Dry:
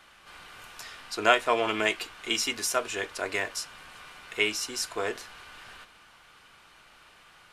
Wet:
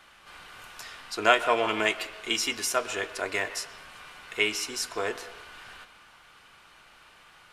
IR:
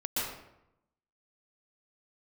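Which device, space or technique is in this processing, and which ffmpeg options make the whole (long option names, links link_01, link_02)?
filtered reverb send: -filter_complex "[0:a]asplit=2[link_01][link_02];[link_02]highpass=430,lowpass=4000[link_03];[1:a]atrim=start_sample=2205[link_04];[link_03][link_04]afir=irnorm=-1:irlink=0,volume=-18dB[link_05];[link_01][link_05]amix=inputs=2:normalize=0"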